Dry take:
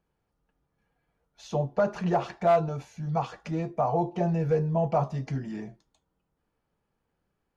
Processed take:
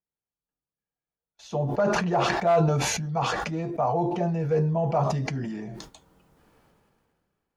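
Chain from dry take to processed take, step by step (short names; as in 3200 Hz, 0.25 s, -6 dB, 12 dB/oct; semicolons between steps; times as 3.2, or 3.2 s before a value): low shelf 71 Hz -6.5 dB; gate with hold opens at -48 dBFS; sustainer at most 25 dB/s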